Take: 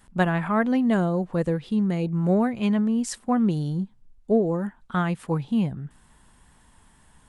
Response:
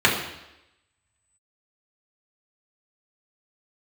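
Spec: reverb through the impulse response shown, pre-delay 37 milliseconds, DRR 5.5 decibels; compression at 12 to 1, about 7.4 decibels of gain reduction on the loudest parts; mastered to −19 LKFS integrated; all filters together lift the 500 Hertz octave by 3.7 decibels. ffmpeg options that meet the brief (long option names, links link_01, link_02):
-filter_complex "[0:a]equalizer=frequency=500:width_type=o:gain=4.5,acompressor=threshold=-21dB:ratio=12,asplit=2[link_01][link_02];[1:a]atrim=start_sample=2205,adelay=37[link_03];[link_02][link_03]afir=irnorm=-1:irlink=0,volume=-26dB[link_04];[link_01][link_04]amix=inputs=2:normalize=0,volume=7dB"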